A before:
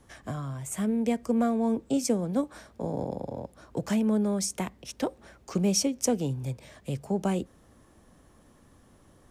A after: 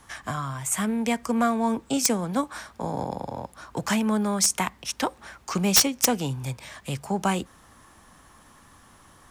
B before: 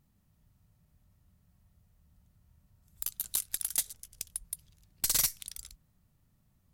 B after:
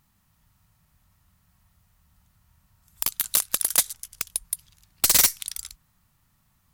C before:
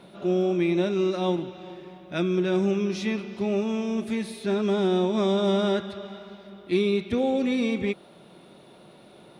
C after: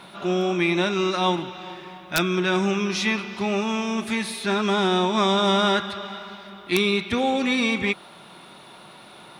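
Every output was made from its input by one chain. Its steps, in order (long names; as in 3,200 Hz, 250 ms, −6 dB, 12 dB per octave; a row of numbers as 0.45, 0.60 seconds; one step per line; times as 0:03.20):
low shelf with overshoot 720 Hz −8.5 dB, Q 1.5
wrap-around overflow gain 19 dB
normalise the peak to −9 dBFS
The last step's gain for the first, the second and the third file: +10.0, +10.0, +10.0 decibels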